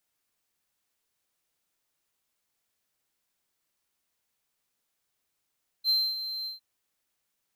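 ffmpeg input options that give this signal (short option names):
-f lavfi -i "aevalsrc='0.119*(1-4*abs(mod(4120*t+0.25,1)-0.5))':d=0.756:s=44100,afade=t=in:d=0.054,afade=t=out:st=0.054:d=0.256:silence=0.266,afade=t=out:st=0.62:d=0.136"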